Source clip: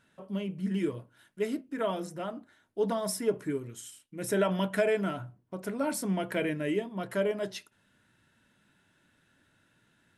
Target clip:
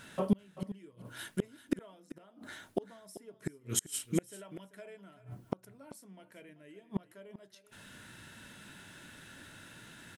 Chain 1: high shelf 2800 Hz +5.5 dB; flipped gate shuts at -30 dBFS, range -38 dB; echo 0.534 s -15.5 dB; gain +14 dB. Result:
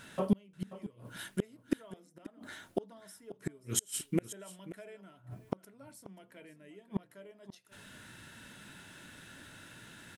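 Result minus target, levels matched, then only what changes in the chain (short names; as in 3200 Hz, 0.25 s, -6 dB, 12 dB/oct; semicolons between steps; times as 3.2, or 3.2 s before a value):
echo 0.146 s late
change: echo 0.388 s -15.5 dB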